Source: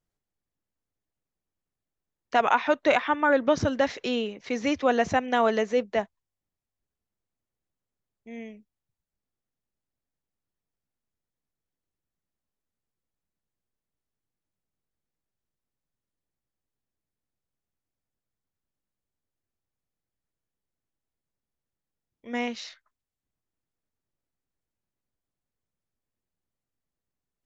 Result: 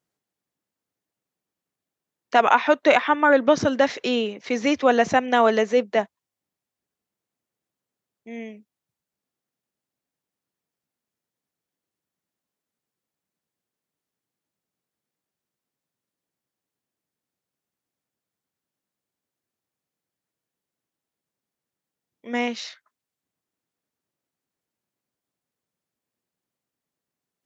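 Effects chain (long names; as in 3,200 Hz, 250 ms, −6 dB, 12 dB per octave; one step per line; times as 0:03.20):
high-pass filter 160 Hz 12 dB per octave
level +5 dB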